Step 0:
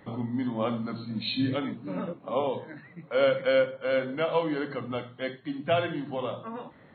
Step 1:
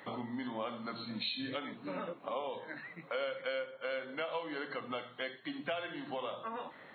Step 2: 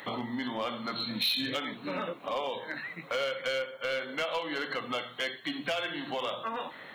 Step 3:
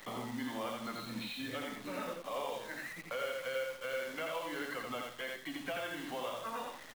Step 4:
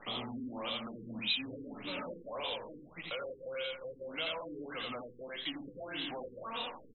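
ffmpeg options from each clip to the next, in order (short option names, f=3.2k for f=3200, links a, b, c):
-af "highpass=f=910:p=1,acompressor=threshold=-43dB:ratio=4,volume=6dB"
-filter_complex "[0:a]highshelf=f=2.5k:g=10.5,asplit=2[a][b];[b]aeval=exprs='0.0299*(abs(mod(val(0)/0.0299+3,4)-2)-1)':c=same,volume=-3dB[c];[a][c]amix=inputs=2:normalize=0"
-filter_complex "[0:a]acrossover=split=280|850|2600[a][b][c][d];[d]acompressor=threshold=-49dB:ratio=6[e];[a][b][c][e]amix=inputs=4:normalize=0,acrusher=bits=8:dc=4:mix=0:aa=0.000001,aecho=1:1:85:0.708,volume=-7dB"
-af "asoftclip=type=tanh:threshold=-38dB,aexciter=amount=8.8:drive=3.1:freq=2.7k,afftfilt=real='re*lt(b*sr/1024,480*pow(4100/480,0.5+0.5*sin(2*PI*1.7*pts/sr)))':imag='im*lt(b*sr/1024,480*pow(4100/480,0.5+0.5*sin(2*PI*1.7*pts/sr)))':win_size=1024:overlap=0.75,volume=2dB"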